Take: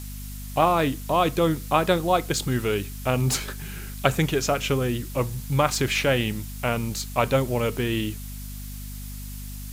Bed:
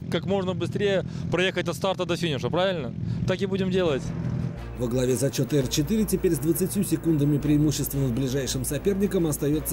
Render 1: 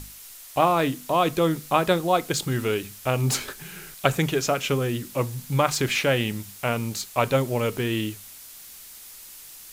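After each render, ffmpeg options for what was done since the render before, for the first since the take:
-af "bandreject=f=50:t=h:w=6,bandreject=f=100:t=h:w=6,bandreject=f=150:t=h:w=6,bandreject=f=200:t=h:w=6,bandreject=f=250:t=h:w=6"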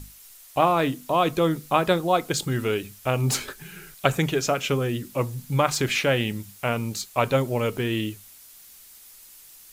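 -af "afftdn=nr=6:nf=-44"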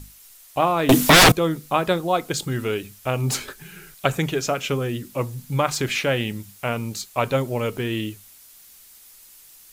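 -filter_complex "[0:a]asettb=1/sr,asplit=3[s0][s1][s2];[s0]atrim=end=0.894[s3];[s1]atrim=start=0.89:end=1.32,asetpts=PTS-STARTPTS,afade=t=in:d=0.004:c=qsin,afade=t=out:st=0.426:d=0.004:c=qsin,aeval=exprs='0.422*sin(PI/2*8.91*val(0)/0.422)':c=same[s4];[s2]atrim=start=1.316[s5];[s3][s4]acrossfade=d=0.004:c1=hsin:c2=qsin[s6];[s6][s5]acrossfade=d=0.004:c1=qsin:c2=hsin"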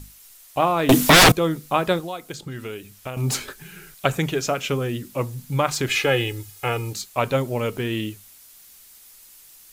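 -filter_complex "[0:a]asettb=1/sr,asplit=3[s0][s1][s2];[s0]atrim=end=1.994[s3];[s1]atrim=start=1.99:end=3.17,asetpts=PTS-STARTPTS,afade=t=in:d=0.004:c=qsin,afade=t=out:st=1.176:d=0.004:c=qsin,acrossover=split=1600|6300[s4][s5][s6];[s4]acompressor=threshold=0.0251:ratio=4[s7];[s5]acompressor=threshold=0.00891:ratio=4[s8];[s6]acompressor=threshold=0.00355:ratio=4[s9];[s7][s8][s9]amix=inputs=3:normalize=0[s10];[s2]atrim=start=3.166[s11];[s3][s10]acrossfade=d=0.004:c1=hsin:c2=qsin[s12];[s12][s11]acrossfade=d=0.004:c1=qsin:c2=hsin,asettb=1/sr,asplit=3[s13][s14][s15];[s13]atrim=end=5.894[s16];[s14]atrim=start=5.89:end=6.93,asetpts=PTS-STARTPTS,afade=t=in:d=0.004:c=qsin,afade=t=out:st=1.036:d=0.004:c=qsin,aecho=1:1:2.4:0.9,atrim=end_sample=45864[s17];[s15]atrim=start=6.926[s18];[s16][s17]acrossfade=d=0.004:c1=hsin:c2=qsin[s19];[s19][s18]acrossfade=d=0.004:c1=qsin:c2=hsin"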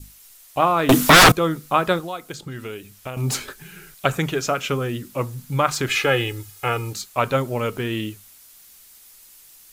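-af "adynamicequalizer=threshold=0.0158:dfrequency=1300:dqfactor=2.2:tfrequency=1300:tqfactor=2.2:attack=5:release=100:ratio=0.375:range=3:mode=boostabove:tftype=bell"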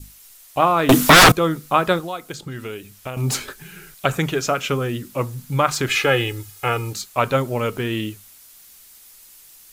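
-af "volume=1.19,alimiter=limit=0.794:level=0:latency=1"

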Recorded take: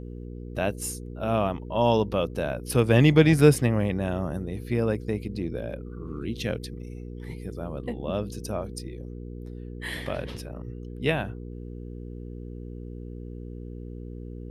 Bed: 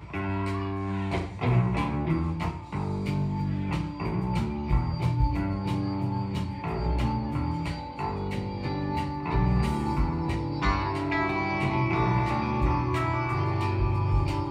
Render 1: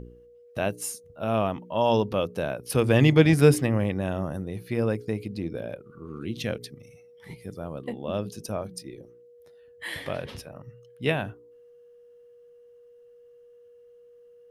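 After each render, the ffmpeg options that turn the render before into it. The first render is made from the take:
-af "bandreject=f=60:t=h:w=4,bandreject=f=120:t=h:w=4,bandreject=f=180:t=h:w=4,bandreject=f=240:t=h:w=4,bandreject=f=300:t=h:w=4,bandreject=f=360:t=h:w=4,bandreject=f=420:t=h:w=4"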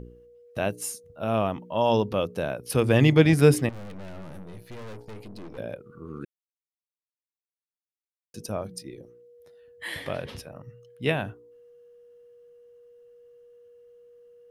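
-filter_complex "[0:a]asettb=1/sr,asplit=3[s0][s1][s2];[s0]atrim=end=3.694[s3];[s1]atrim=start=3.69:end=5.58,asetpts=PTS-STARTPTS,afade=t=in:d=0.004:c=qsin,afade=t=out:st=1.886:d=0.004:c=qsin,aeval=exprs='(tanh(89.1*val(0)+0.8)-tanh(0.8))/89.1':c=same[s4];[s2]atrim=start=5.576[s5];[s3][s4]acrossfade=d=0.004:c1=hsin:c2=qsin[s6];[s6][s5]acrossfade=d=0.004:c1=qsin:c2=hsin,asplit=3[s7][s8][s9];[s7]atrim=end=6.25,asetpts=PTS-STARTPTS,afade=t=out:st=6.246:d=0.004:c=hsin[s10];[s8]atrim=start=6.25:end=8.34,asetpts=PTS-STARTPTS,volume=0[s11];[s9]atrim=start=8.34,asetpts=PTS-STARTPTS,afade=t=in:d=0.004:c=hsin[s12];[s10][s11][s12]concat=n=3:v=0:a=1"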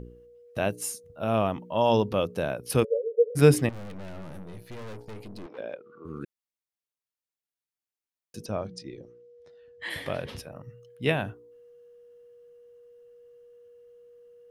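-filter_complex "[0:a]asplit=3[s0][s1][s2];[s0]afade=t=out:st=2.83:d=0.02[s3];[s1]asuperpass=centerf=480:order=20:qfactor=3.1,afade=t=in:st=2.83:d=0.02,afade=t=out:st=3.35:d=0.02[s4];[s2]afade=t=in:st=3.35:d=0.02[s5];[s3][s4][s5]amix=inputs=3:normalize=0,asettb=1/sr,asplit=3[s6][s7][s8];[s6]atrim=end=5.464[s9];[s7]atrim=start=5.46:end=6.05,asetpts=PTS-STARTPTS,afade=t=in:d=0.004:c=qsin,afade=t=out:st=0.586:d=0.004:c=qsin,highpass=360,lowpass=4000[s10];[s8]atrim=start=6.046[s11];[s9][s10]acrossfade=d=0.004:c1=hsin:c2=qsin[s12];[s12][s11]acrossfade=d=0.004:c1=qsin:c2=hsin,asplit=3[s13][s14][s15];[s13]afade=t=out:st=8.44:d=0.02[s16];[s14]lowpass=f=6700:w=0.5412,lowpass=f=6700:w=1.3066,afade=t=in:st=8.44:d=0.02,afade=t=out:st=9.89:d=0.02[s17];[s15]afade=t=in:st=9.89:d=0.02[s18];[s16][s17][s18]amix=inputs=3:normalize=0"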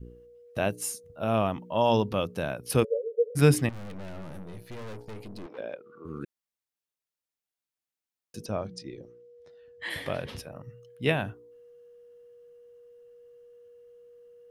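-af "adynamicequalizer=threshold=0.0141:dfrequency=470:dqfactor=1.3:tfrequency=470:tqfactor=1.3:attack=5:release=100:ratio=0.375:range=3:mode=cutabove:tftype=bell"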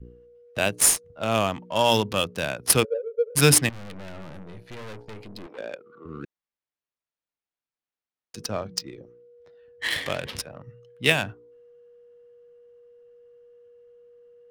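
-filter_complex "[0:a]acrossover=split=240[s0][s1];[s1]crystalizer=i=8:c=0[s2];[s0][s2]amix=inputs=2:normalize=0,adynamicsmooth=sensitivity=3.5:basefreq=1500"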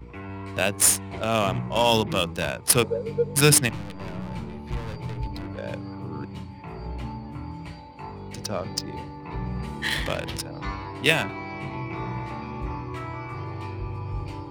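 -filter_complex "[1:a]volume=0.447[s0];[0:a][s0]amix=inputs=2:normalize=0"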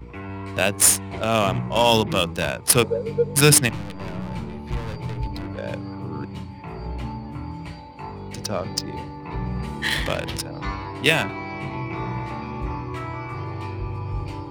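-af "volume=1.41,alimiter=limit=0.891:level=0:latency=1"

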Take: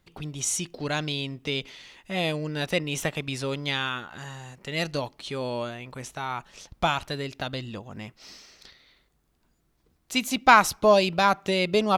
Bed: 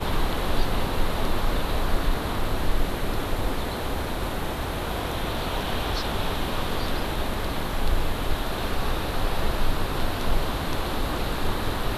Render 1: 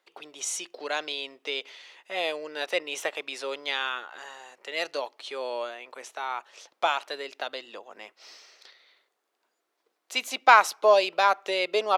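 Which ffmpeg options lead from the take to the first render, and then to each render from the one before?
-af "highpass=f=420:w=0.5412,highpass=f=420:w=1.3066,highshelf=f=6700:g=-8"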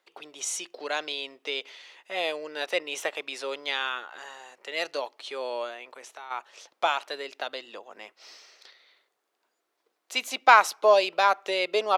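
-filter_complex "[0:a]asplit=3[s0][s1][s2];[s0]afade=t=out:st=5.9:d=0.02[s3];[s1]acompressor=threshold=0.00794:ratio=2.5:attack=3.2:release=140:knee=1:detection=peak,afade=t=in:st=5.9:d=0.02,afade=t=out:st=6.3:d=0.02[s4];[s2]afade=t=in:st=6.3:d=0.02[s5];[s3][s4][s5]amix=inputs=3:normalize=0"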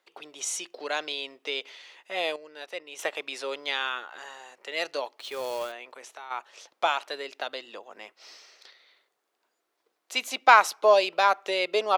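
-filter_complex "[0:a]asettb=1/sr,asplit=3[s0][s1][s2];[s0]atrim=end=5.194[s3];[s1]atrim=start=5.19:end=5.72,asetpts=PTS-STARTPTS,afade=t=in:d=0.004:c=qsin,afade=t=out:st=0.526:d=0.004:c=qsin,acrusher=bits=3:mode=log:mix=0:aa=0.000001[s4];[s2]atrim=start=5.716[s5];[s3][s4]acrossfade=d=0.004:c1=hsin:c2=qsin[s6];[s6][s5]acrossfade=d=0.004:c1=qsin:c2=hsin,asplit=3[s7][s8][s9];[s7]atrim=end=2.362[s10];[s8]atrim=start=2.358:end=2.992,asetpts=PTS-STARTPTS,volume=0.335[s11];[s9]atrim=start=2.988[s12];[s10][s11]acrossfade=d=0.004:c1=hsin:c2=hsin[s13];[s13][s12]acrossfade=d=0.004:c1=hsin:c2=hsin"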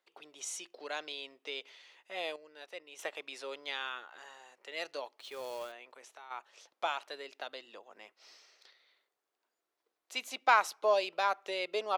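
-af "volume=0.355"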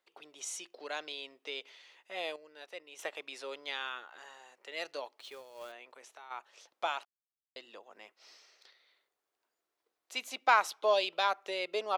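-filter_complex "[0:a]asettb=1/sr,asplit=3[s0][s1][s2];[s0]atrim=end=10.694[s3];[s1]atrim=start=10.69:end=11.31,asetpts=PTS-STARTPTS,afade=t=in:d=0.004:c=qsin,afade=t=out:st=0.616:d=0.004:c=qsin,equalizer=f=3400:w=3:g=9[s4];[s2]atrim=start=11.306[s5];[s3][s4]acrossfade=d=0.004:c1=hsin:c2=qsin[s6];[s6][s5]acrossfade=d=0.004:c1=qsin:c2=hsin,asplit=5[s7][s8][s9][s10][s11];[s7]atrim=end=5.44,asetpts=PTS-STARTPTS,afade=t=out:st=5.2:d=0.24:c=qsin:silence=0.223872[s12];[s8]atrim=start=5.44:end=5.54,asetpts=PTS-STARTPTS,volume=0.224[s13];[s9]atrim=start=5.54:end=7.05,asetpts=PTS-STARTPTS,afade=t=in:d=0.24:c=qsin:silence=0.223872,afade=t=out:st=1.506:d=0.004:c=hsin[s14];[s10]atrim=start=7.05:end=7.56,asetpts=PTS-STARTPTS,volume=0[s15];[s11]atrim=start=7.56,asetpts=PTS-STARTPTS,afade=t=in:d=0.004:c=hsin[s16];[s12][s13][s14][s15][s16]concat=n=5:v=0:a=1"

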